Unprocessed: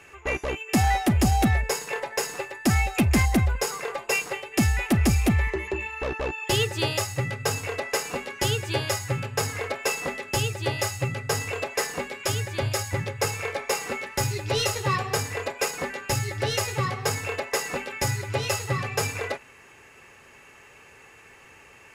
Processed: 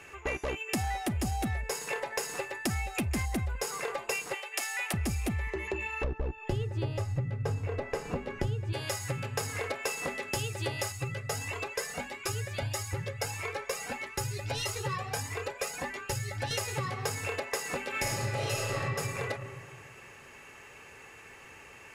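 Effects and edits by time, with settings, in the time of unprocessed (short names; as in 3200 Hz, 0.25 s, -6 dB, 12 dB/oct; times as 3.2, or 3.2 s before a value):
4.34–4.94 Bessel high-pass 740 Hz, order 6
6.04–8.73 tilt -4 dB/oct
10.92–16.51 cascading flanger rising 1.6 Hz
17.9–18.79 reverb throw, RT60 1.7 s, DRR -7.5 dB
whole clip: dynamic EQ 9400 Hz, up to +4 dB, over -49 dBFS, Q 1.9; compressor 6:1, threshold -30 dBFS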